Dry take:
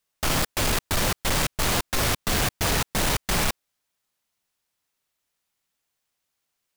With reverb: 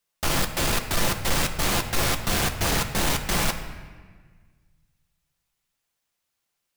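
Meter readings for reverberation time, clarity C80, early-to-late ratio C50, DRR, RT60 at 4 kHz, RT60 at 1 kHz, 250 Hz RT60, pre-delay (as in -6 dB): 1.5 s, 10.5 dB, 9.5 dB, 5.5 dB, 1.1 s, 1.5 s, 1.9 s, 6 ms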